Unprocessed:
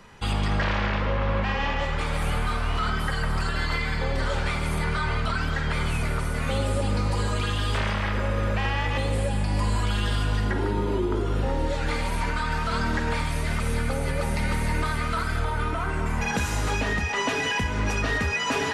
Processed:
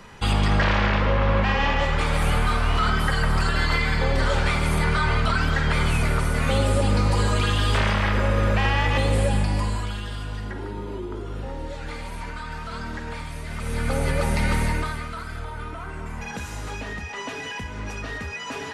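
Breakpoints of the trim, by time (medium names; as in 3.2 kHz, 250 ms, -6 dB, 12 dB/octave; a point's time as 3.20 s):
9.36 s +4.5 dB
10.05 s -7 dB
13.48 s -7 dB
13.96 s +3.5 dB
14.62 s +3.5 dB
15.12 s -7 dB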